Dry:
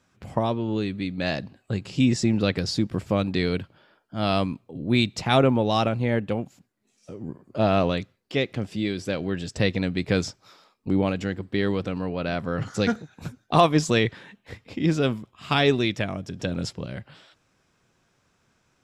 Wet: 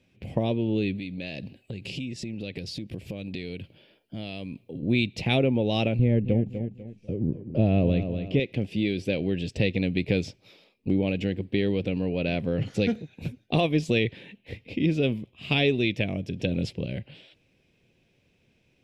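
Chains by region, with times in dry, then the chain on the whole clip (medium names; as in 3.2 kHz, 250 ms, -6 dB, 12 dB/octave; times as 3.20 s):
0.96–4.83 s: compression 10:1, threshold -33 dBFS + treble shelf 4.4 kHz +8 dB
5.99–8.40 s: tilt EQ -3 dB/octave + feedback delay 247 ms, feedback 30%, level -13.5 dB
whole clip: FFT filter 520 Hz 0 dB, 1.3 kHz -20 dB, 2.5 kHz +3 dB, 7.3 kHz -19 dB, 10 kHz -14 dB; compression 2.5:1, threshold -24 dBFS; treble shelf 5.3 kHz +8 dB; trim +2.5 dB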